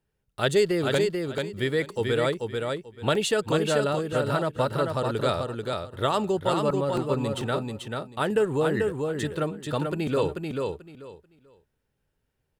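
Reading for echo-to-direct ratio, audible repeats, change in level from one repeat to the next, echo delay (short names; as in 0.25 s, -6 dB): -4.0 dB, 3, -14.0 dB, 0.438 s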